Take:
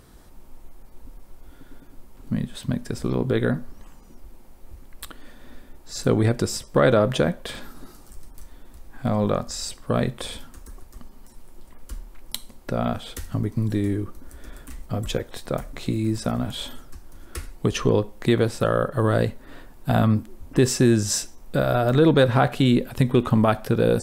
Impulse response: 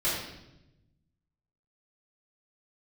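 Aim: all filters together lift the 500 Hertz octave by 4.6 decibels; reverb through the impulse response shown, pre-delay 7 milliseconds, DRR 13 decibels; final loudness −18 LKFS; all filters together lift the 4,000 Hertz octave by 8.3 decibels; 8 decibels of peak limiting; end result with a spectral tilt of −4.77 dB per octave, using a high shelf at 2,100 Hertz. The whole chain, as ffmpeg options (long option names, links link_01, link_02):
-filter_complex "[0:a]equalizer=frequency=500:width_type=o:gain=5,highshelf=frequency=2100:gain=6,equalizer=frequency=4000:width_type=o:gain=4.5,alimiter=limit=-9.5dB:level=0:latency=1,asplit=2[link_01][link_02];[1:a]atrim=start_sample=2205,adelay=7[link_03];[link_02][link_03]afir=irnorm=-1:irlink=0,volume=-23dB[link_04];[link_01][link_04]amix=inputs=2:normalize=0,volume=4.5dB"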